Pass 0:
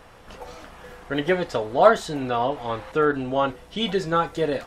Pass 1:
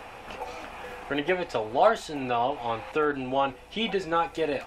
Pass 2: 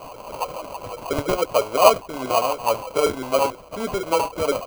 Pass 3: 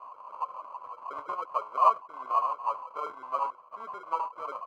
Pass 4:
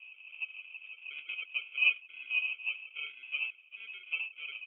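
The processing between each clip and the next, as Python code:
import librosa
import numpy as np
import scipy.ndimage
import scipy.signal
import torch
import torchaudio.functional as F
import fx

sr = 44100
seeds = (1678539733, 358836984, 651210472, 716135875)

y1 = fx.graphic_eq_31(x, sr, hz=(160, 800, 2500), db=(-9, 7, 10))
y1 = fx.band_squash(y1, sr, depth_pct=40)
y1 = F.gain(torch.from_numpy(y1), -5.0).numpy()
y2 = fx.filter_lfo_lowpass(y1, sr, shape='saw_down', hz=6.2, low_hz=340.0, high_hz=5400.0, q=3.6)
y2 = fx.sample_hold(y2, sr, seeds[0], rate_hz=1800.0, jitter_pct=0)
y2 = fx.small_body(y2, sr, hz=(580.0, 1000.0), ring_ms=25, db=9)
y2 = F.gain(torch.from_numpy(y2), -1.0).numpy()
y3 = fx.bandpass_q(y2, sr, hz=1100.0, q=7.1)
y4 = fx.freq_invert(y3, sr, carrier_hz=3600)
y4 = F.gain(torch.from_numpy(y4), -5.5).numpy()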